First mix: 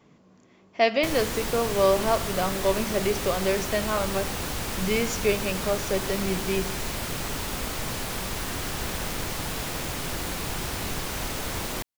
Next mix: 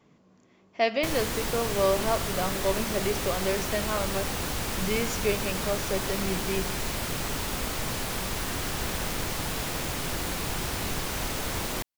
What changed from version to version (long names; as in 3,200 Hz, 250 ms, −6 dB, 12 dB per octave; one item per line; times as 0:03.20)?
speech −3.5 dB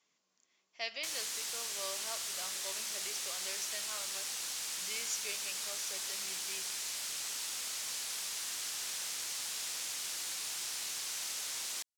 master: add resonant band-pass 6,700 Hz, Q 1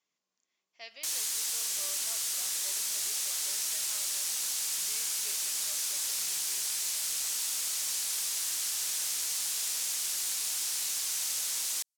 speech −7.5 dB
background: add high-shelf EQ 5,700 Hz +11.5 dB